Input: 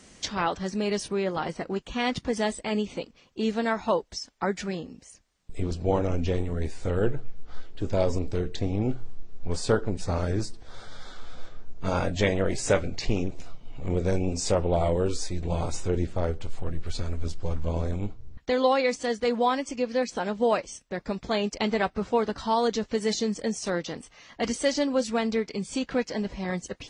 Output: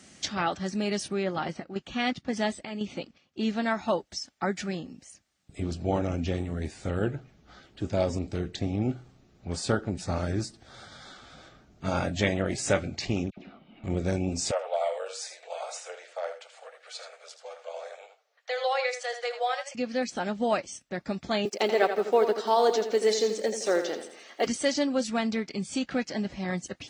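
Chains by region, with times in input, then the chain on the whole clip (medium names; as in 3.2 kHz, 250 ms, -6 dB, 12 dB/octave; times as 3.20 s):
1.23–3.70 s: low-pass 6.5 kHz + square tremolo 1.9 Hz, depth 60%, duty 70%
13.30–13.84 s: low-pass 3.4 kHz 24 dB/octave + resonant low shelf 150 Hz -9.5 dB, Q 3 + phase dispersion lows, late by 73 ms, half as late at 1.6 kHz
14.51–19.75 s: rippled Chebyshev high-pass 460 Hz, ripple 3 dB + delay 80 ms -9.5 dB
21.45–24.47 s: block-companded coder 7-bit + resonant high-pass 430 Hz, resonance Q 3.5 + feedback delay 83 ms, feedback 45%, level -9 dB
whole clip: high-pass 90 Hz; peaking EQ 460 Hz -8.5 dB 0.29 oct; band-stop 1 kHz, Q 6.4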